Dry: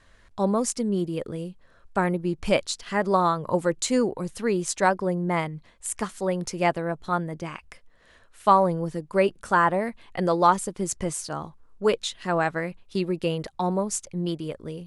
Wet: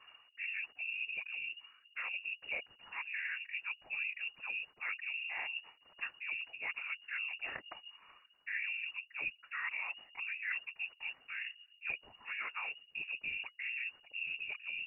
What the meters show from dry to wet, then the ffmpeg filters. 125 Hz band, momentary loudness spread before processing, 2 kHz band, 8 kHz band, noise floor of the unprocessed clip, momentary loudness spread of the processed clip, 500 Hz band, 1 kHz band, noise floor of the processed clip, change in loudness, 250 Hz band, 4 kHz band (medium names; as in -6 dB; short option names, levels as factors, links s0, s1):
under -40 dB, 12 LU, -3.5 dB, under -40 dB, -57 dBFS, 6 LU, -37.5 dB, -28.0 dB, -68 dBFS, -14.0 dB, under -40 dB, -9.0 dB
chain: -af "areverse,acompressor=threshold=0.0126:ratio=5,areverse,afftfilt=real='hypot(re,im)*cos(2*PI*random(0))':imag='hypot(re,im)*sin(2*PI*random(1))':win_size=512:overlap=0.75,lowpass=f=2500:t=q:w=0.5098,lowpass=f=2500:t=q:w=0.6013,lowpass=f=2500:t=q:w=0.9,lowpass=f=2500:t=q:w=2.563,afreqshift=-2900,volume=1.68"